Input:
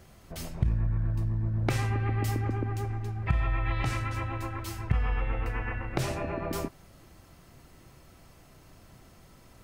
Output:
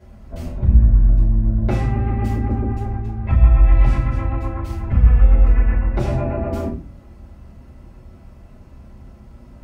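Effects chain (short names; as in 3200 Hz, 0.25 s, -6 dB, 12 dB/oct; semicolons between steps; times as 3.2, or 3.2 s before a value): HPF 44 Hz 24 dB/oct; tilt -3 dB/oct; in parallel at -7 dB: overloaded stage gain 11.5 dB; on the sum: shoebox room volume 160 m³, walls furnished, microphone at 5.1 m; gain -10 dB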